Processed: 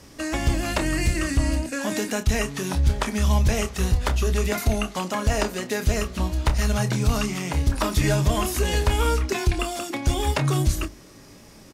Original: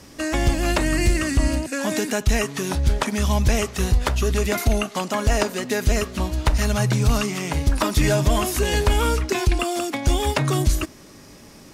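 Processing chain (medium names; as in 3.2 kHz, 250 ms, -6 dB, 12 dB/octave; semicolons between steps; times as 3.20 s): bass shelf 160 Hz +3 dB; hum notches 50/100/150/200/250/300/350 Hz; doubling 28 ms -9.5 dB; trim -3 dB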